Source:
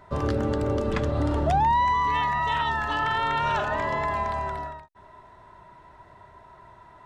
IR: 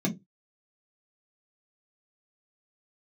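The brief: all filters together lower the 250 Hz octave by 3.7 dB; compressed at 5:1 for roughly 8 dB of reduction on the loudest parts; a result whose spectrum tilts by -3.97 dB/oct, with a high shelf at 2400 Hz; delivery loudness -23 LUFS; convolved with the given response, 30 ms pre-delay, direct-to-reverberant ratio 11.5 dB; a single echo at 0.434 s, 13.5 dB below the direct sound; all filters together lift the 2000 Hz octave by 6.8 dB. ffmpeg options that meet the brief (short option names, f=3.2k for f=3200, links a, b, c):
-filter_complex "[0:a]equalizer=f=250:t=o:g=-5,equalizer=f=2k:t=o:g=6.5,highshelf=f=2.4k:g=3,acompressor=threshold=-27dB:ratio=5,aecho=1:1:434:0.211,asplit=2[a][b];[1:a]atrim=start_sample=2205,adelay=30[c];[b][c]afir=irnorm=-1:irlink=0,volume=-18dB[d];[a][d]amix=inputs=2:normalize=0,volume=5.5dB"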